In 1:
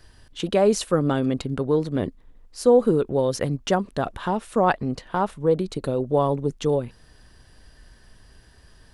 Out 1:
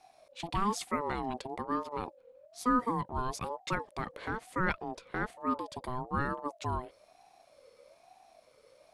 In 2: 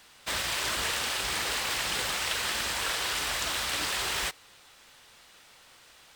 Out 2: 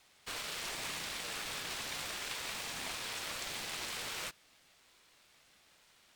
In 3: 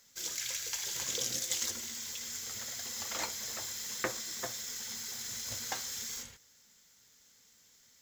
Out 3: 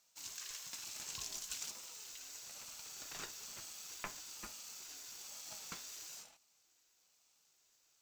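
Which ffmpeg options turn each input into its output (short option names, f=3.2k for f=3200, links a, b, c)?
-af "equalizer=f=240:w=0.56:g=-3.5,aeval=exprs='val(0)*sin(2*PI*630*n/s+630*0.2/1.1*sin(2*PI*1.1*n/s))':c=same,volume=-7dB"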